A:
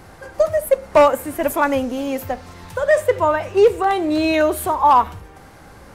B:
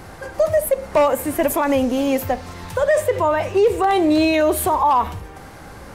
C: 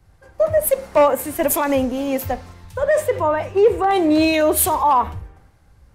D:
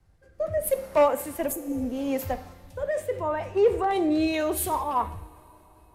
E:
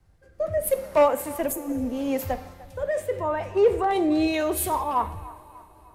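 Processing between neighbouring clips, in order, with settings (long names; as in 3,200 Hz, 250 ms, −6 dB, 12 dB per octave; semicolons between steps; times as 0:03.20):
brickwall limiter −13.5 dBFS, peak gain reduction 8.5 dB; dynamic equaliser 1,400 Hz, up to −5 dB, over −43 dBFS, Q 4.2; level +4.5 dB
multiband upward and downward expander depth 100%
healed spectral selection 0:01.55–0:01.83, 500–6,200 Hz after; rotating-speaker cabinet horn 0.75 Hz, later 5 Hz, at 0:04.03; coupled-rooms reverb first 0.6 s, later 4.5 s, from −18 dB, DRR 13 dB; level −6 dB
delay with a band-pass on its return 299 ms, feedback 46%, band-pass 1,200 Hz, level −17.5 dB; level +1.5 dB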